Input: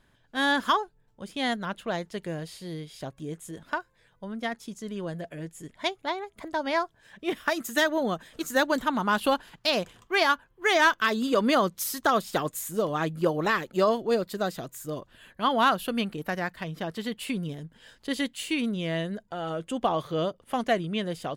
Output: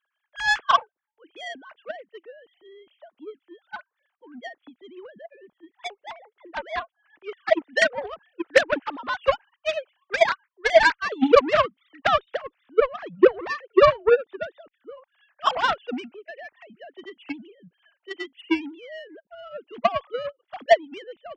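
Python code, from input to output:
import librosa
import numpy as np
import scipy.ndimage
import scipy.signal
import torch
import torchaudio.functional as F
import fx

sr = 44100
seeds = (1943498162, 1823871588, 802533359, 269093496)

y = fx.sine_speech(x, sr)
y = fx.cheby_harmonics(y, sr, harmonics=(7,), levels_db=(-19,), full_scale_db=-8.0)
y = y * librosa.db_to_amplitude(5.5)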